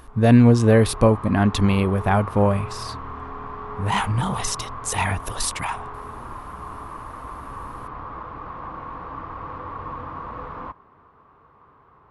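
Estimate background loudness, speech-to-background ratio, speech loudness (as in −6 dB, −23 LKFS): −35.0 LKFS, 15.0 dB, −20.0 LKFS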